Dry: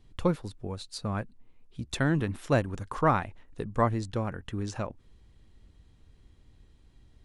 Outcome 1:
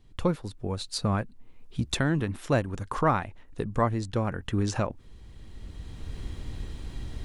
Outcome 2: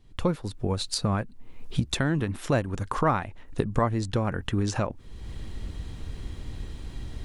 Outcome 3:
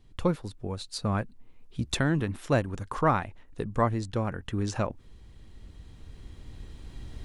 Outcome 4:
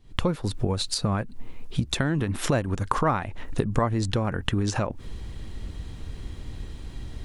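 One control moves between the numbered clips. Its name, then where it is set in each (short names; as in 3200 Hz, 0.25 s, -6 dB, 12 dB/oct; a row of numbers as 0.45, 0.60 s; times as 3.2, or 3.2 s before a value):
recorder AGC, rising by: 12, 34, 5.1, 85 dB/s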